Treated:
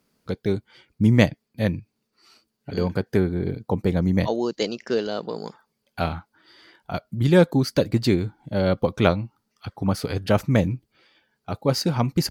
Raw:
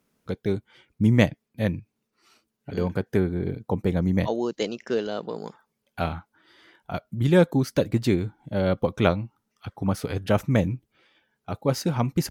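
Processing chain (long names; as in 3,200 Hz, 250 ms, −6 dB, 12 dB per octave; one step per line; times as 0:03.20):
parametric band 4,600 Hz +9.5 dB 0.23 octaves
level +2 dB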